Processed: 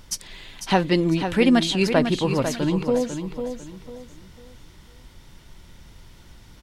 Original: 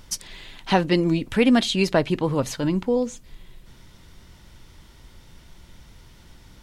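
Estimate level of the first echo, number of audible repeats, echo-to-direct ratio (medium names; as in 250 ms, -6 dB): -8.0 dB, 3, -7.5 dB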